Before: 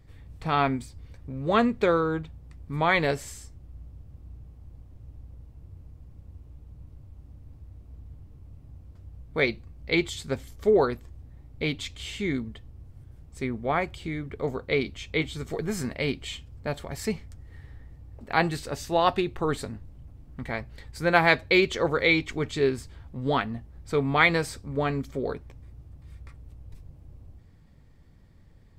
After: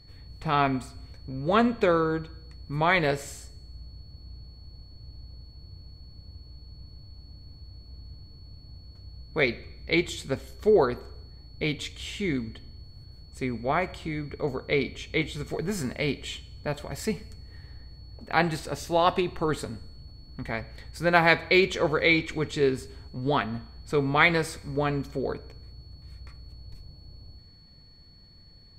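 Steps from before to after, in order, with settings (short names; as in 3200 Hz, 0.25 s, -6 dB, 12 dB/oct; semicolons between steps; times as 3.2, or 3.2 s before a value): Schroeder reverb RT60 0.79 s, combs from 27 ms, DRR 17 dB; whine 4400 Hz -55 dBFS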